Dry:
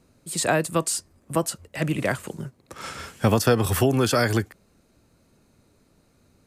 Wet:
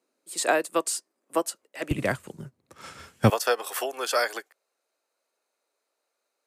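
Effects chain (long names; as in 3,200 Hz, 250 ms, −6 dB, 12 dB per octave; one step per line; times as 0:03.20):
high-pass filter 310 Hz 24 dB per octave, from 0:01.91 61 Hz, from 0:03.30 500 Hz
expander for the loud parts 1.5 to 1, over −44 dBFS
level +2 dB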